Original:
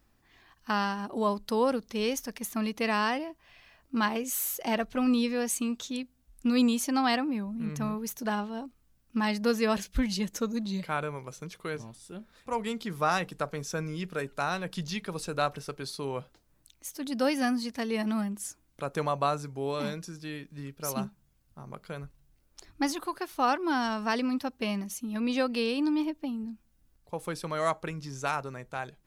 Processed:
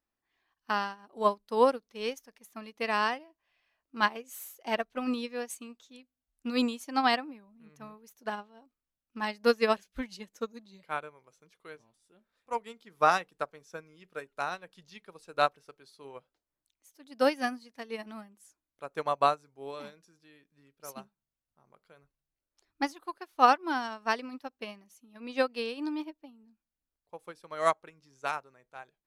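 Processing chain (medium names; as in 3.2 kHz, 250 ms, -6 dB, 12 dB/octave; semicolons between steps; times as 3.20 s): tone controls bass -11 dB, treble -3 dB; upward expansion 2.5:1, over -39 dBFS; trim +7.5 dB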